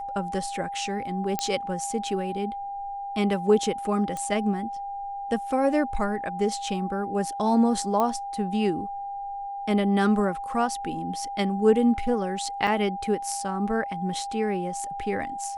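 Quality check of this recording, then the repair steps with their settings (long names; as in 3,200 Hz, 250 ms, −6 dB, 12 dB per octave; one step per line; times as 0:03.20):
whistle 800 Hz −31 dBFS
0:01.39: click −10 dBFS
0:04.17: click
0:08.00: click −13 dBFS
0:12.67: drop-out 4.2 ms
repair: click removal
notch filter 800 Hz, Q 30
repair the gap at 0:12.67, 4.2 ms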